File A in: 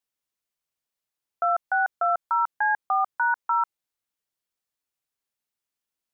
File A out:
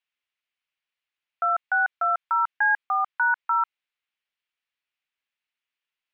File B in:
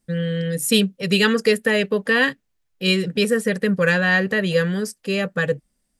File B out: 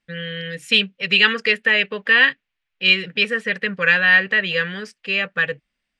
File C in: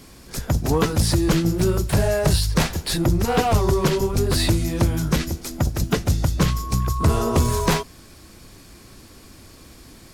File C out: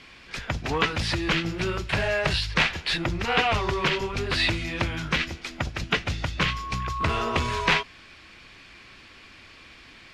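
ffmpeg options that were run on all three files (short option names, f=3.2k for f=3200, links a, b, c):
-af "lowpass=f=2.6k:t=q:w=1.8,tiltshelf=f=970:g=-8,volume=-2.5dB"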